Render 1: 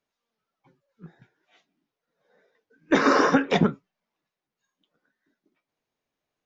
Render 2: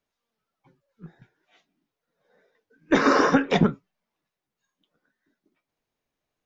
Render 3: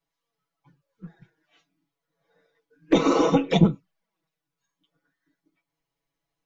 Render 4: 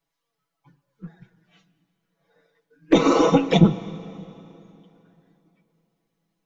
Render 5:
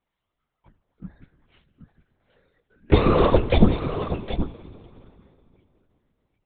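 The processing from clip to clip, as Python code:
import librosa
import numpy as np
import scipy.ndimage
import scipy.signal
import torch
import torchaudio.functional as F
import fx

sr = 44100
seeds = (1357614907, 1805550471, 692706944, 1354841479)

y1 = fx.low_shelf(x, sr, hz=77.0, db=9.5)
y2 = y1 + 0.81 * np.pad(y1, (int(6.1 * sr / 1000.0), 0))[:len(y1)]
y2 = fx.env_flanger(y2, sr, rest_ms=7.1, full_db=-17.0)
y3 = fx.rev_plate(y2, sr, seeds[0], rt60_s=3.1, hf_ratio=0.85, predelay_ms=0, drr_db=14.5)
y3 = y3 * librosa.db_to_amplitude(3.0)
y4 = y3 + 10.0 ** (-10.5 / 20.0) * np.pad(y3, (int(772 * sr / 1000.0), 0))[:len(y3)]
y4 = fx.lpc_vocoder(y4, sr, seeds[1], excitation='whisper', order=10)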